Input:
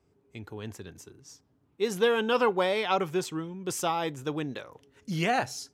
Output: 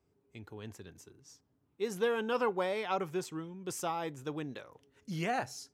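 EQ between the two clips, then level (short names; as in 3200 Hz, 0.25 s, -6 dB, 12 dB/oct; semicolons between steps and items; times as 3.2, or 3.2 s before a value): dynamic EQ 3400 Hz, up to -5 dB, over -45 dBFS, Q 1.7; -6.5 dB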